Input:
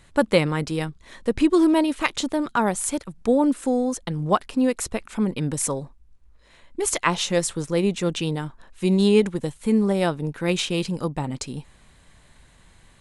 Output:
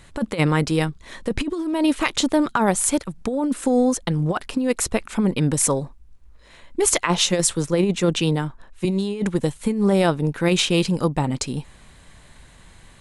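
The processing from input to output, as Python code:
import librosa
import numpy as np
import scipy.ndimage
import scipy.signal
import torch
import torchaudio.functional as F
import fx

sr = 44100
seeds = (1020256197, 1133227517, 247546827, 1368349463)

y = fx.over_compress(x, sr, threshold_db=-21.0, ratio=-0.5)
y = fx.band_widen(y, sr, depth_pct=40, at=(7.03, 8.85))
y = y * 10.0 ** (3.5 / 20.0)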